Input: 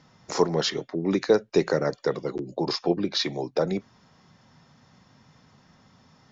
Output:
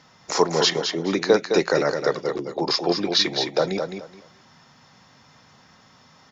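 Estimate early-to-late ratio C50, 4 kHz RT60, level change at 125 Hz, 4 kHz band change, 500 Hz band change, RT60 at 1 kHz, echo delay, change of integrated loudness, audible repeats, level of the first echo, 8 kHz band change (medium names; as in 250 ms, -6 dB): no reverb, no reverb, -0.5 dB, +8.0 dB, +3.0 dB, no reverb, 212 ms, +4.0 dB, 3, -6.5 dB, no reading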